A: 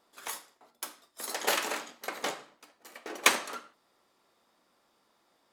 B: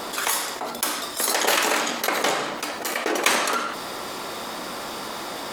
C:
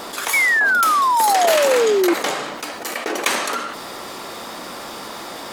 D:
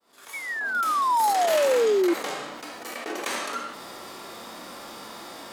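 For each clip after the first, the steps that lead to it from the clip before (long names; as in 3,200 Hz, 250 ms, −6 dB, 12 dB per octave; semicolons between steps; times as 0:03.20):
envelope flattener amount 70%; level +1 dB
sound drawn into the spectrogram fall, 0:00.33–0:02.14, 330–2,300 Hz −16 dBFS
fade in at the beginning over 1.09 s; harmonic and percussive parts rebalanced percussive −12 dB; level −4.5 dB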